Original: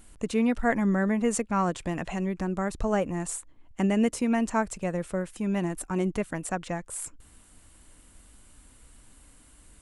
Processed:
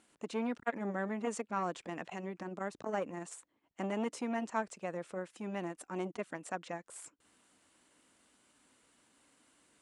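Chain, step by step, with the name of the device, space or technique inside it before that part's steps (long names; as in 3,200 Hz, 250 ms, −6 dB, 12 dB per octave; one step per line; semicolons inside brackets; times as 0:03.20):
public-address speaker with an overloaded transformer (saturating transformer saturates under 590 Hz; band-pass filter 260–6,800 Hz)
level −6.5 dB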